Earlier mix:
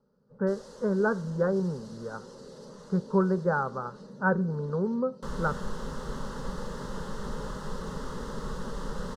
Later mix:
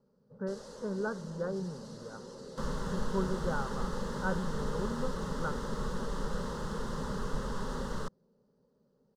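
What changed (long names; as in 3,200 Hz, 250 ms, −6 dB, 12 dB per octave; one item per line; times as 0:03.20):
speech −9.0 dB
second sound: entry −2.65 s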